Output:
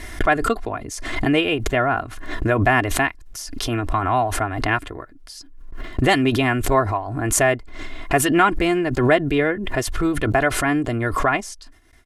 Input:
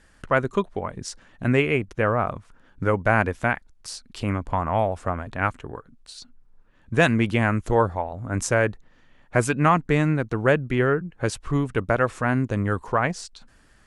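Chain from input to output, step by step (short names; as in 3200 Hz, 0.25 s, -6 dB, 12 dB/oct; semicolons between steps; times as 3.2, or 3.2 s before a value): gate with hold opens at -44 dBFS; comb 3.3 ms, depth 68%; varispeed +15%; backwards sustainer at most 45 dB/s; gain +1 dB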